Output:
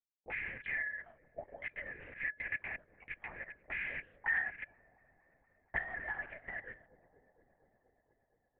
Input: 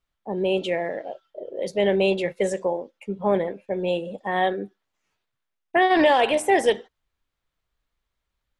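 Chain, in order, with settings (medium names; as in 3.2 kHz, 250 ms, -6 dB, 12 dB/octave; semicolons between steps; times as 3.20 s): rattle on loud lows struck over -34 dBFS, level -19 dBFS; low-pass that closes with the level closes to 880 Hz, closed at -16.5 dBFS; peaking EQ 2.1 kHz +14.5 dB 0.41 oct; band-stop 570 Hz, Q 12; waveshaping leveller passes 1; level held to a coarse grid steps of 11 dB; feedback comb 340 Hz, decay 0.21 s, harmonics odd, mix 40%; auto-wah 260–1700 Hz, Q 11, up, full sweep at -31 dBFS; feedback echo behind a low-pass 235 ms, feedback 79%, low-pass 480 Hz, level -12 dB; LPC vocoder at 8 kHz whisper; 1.48–3.68 s: tape noise reduction on one side only encoder only; trim +3.5 dB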